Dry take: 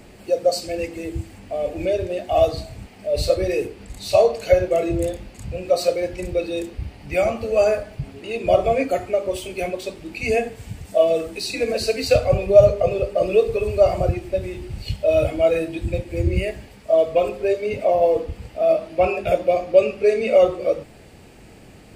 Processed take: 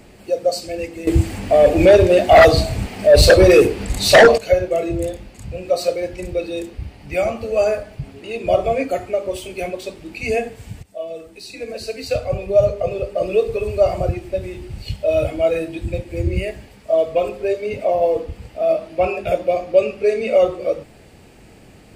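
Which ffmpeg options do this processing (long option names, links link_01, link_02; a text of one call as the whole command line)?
ffmpeg -i in.wav -filter_complex "[0:a]asettb=1/sr,asplit=3[link_01][link_02][link_03];[link_01]atrim=end=1.074[link_04];[link_02]atrim=start=1.07:end=4.38,asetpts=PTS-STARTPTS,afade=type=in:duration=0.004:curve=qsin,afade=type=out:start_time=3.306:duration=0.004:curve=qsin,aeval=exprs='0.668*sin(PI/2*3.16*val(0)/0.668)':channel_layout=same[link_05];[link_03]atrim=start=4.376[link_06];[link_04][link_05]acrossfade=duration=0.004:curve1=hsin:curve2=qsin[link_07];[link_07][link_06]acrossfade=duration=0.004:curve1=qsin:curve2=hsin,asplit=2[link_08][link_09];[link_08]atrim=end=10.83,asetpts=PTS-STARTPTS,afade=type=out:start_time=10.826:duration=0.004:curve=hsin:silence=0.177828[link_10];[link_09]atrim=start=10.83,asetpts=PTS-STARTPTS,afade=type=in:duration=2.72:silence=0.177828[link_11];[link_10][link_11]concat=n=2:v=0:a=1" out.wav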